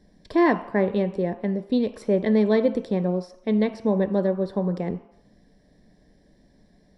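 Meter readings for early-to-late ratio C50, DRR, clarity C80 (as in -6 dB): 14.0 dB, 10.0 dB, 16.5 dB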